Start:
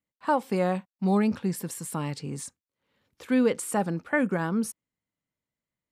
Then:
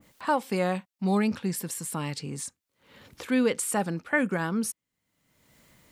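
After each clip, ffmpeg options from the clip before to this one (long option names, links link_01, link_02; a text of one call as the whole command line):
ffmpeg -i in.wav -af "acompressor=mode=upward:threshold=-32dB:ratio=2.5,adynamicequalizer=threshold=0.00794:dfrequency=1500:dqfactor=0.7:tfrequency=1500:tqfactor=0.7:attack=5:release=100:ratio=0.375:range=3:mode=boostabove:tftype=highshelf,volume=-1.5dB" out.wav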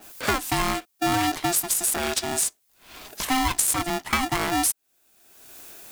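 ffmpeg -i in.wav -af "crystalizer=i=2.5:c=0,acompressor=threshold=-28dB:ratio=4,aeval=exprs='val(0)*sgn(sin(2*PI*520*n/s))':channel_layout=same,volume=7dB" out.wav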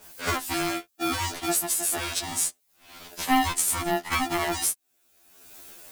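ffmpeg -i in.wav -af "afftfilt=real='re*2*eq(mod(b,4),0)':imag='im*2*eq(mod(b,4),0)':win_size=2048:overlap=0.75" out.wav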